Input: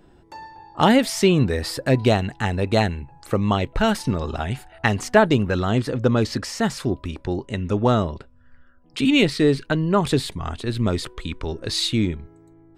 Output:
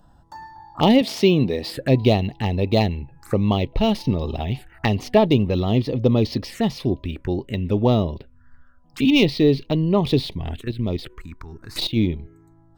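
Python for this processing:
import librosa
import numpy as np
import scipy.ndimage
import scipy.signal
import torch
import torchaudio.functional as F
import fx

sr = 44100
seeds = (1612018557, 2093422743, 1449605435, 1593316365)

y = fx.tracing_dist(x, sr, depth_ms=0.045)
y = fx.highpass(y, sr, hz=150.0, slope=12, at=(1.01, 1.74))
y = fx.level_steps(y, sr, step_db=12, at=(10.6, 11.95), fade=0.02)
y = fx.env_phaser(y, sr, low_hz=370.0, high_hz=1500.0, full_db=-22.5)
y = np.interp(np.arange(len(y)), np.arange(len(y))[::2], y[::2])
y = F.gain(torch.from_numpy(y), 2.0).numpy()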